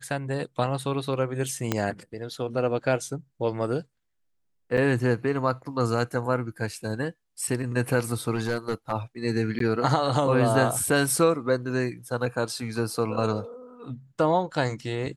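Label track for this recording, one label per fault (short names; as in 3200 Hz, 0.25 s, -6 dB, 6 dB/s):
1.720000	1.720000	pop -9 dBFS
4.770000	4.780000	gap 6.5 ms
8.350000	8.920000	clipped -21.5 dBFS
9.590000	9.600000	gap 13 ms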